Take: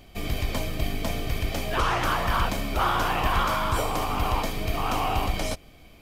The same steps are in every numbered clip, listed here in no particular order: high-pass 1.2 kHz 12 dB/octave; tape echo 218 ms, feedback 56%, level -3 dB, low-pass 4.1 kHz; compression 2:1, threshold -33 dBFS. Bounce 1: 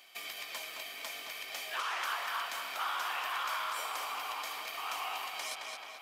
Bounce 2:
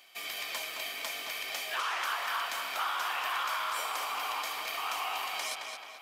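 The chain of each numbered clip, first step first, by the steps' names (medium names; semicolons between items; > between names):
tape echo > compression > high-pass; tape echo > high-pass > compression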